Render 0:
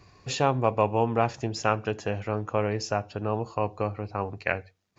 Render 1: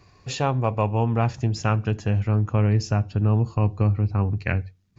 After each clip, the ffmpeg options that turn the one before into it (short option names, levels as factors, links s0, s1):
-af "asubboost=boost=8.5:cutoff=210"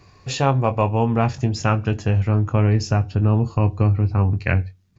-filter_complex "[0:a]asplit=2[s0][s1];[s1]adelay=22,volume=0.316[s2];[s0][s2]amix=inputs=2:normalize=0,volume=1.5"